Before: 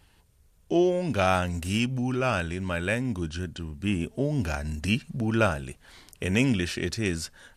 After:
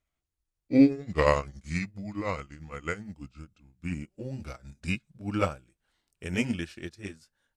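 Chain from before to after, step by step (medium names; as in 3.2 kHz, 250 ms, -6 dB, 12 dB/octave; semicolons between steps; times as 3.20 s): pitch bend over the whole clip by -5 st ending unshifted; word length cut 12-bit, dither none; on a send at -20.5 dB: reverberation RT60 0.20 s, pre-delay 3 ms; on the sum: upward expansion 2.5:1, over -38 dBFS; trim +5.5 dB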